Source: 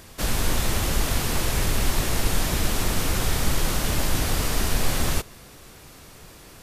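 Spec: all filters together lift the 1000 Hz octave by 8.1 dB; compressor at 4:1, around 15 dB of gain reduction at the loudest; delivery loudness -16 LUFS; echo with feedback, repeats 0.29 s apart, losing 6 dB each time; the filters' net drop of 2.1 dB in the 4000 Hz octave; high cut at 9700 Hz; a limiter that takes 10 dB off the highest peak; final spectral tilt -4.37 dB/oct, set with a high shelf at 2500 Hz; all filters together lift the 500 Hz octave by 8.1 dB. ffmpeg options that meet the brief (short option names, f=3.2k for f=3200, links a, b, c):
-af "lowpass=9.7k,equalizer=f=500:t=o:g=8,equalizer=f=1k:t=o:g=7.5,highshelf=f=2.5k:g=3.5,equalizer=f=4k:t=o:g=-6.5,acompressor=threshold=-34dB:ratio=4,alimiter=level_in=8dB:limit=-24dB:level=0:latency=1,volume=-8dB,aecho=1:1:290|580|870|1160|1450|1740:0.501|0.251|0.125|0.0626|0.0313|0.0157,volume=25.5dB"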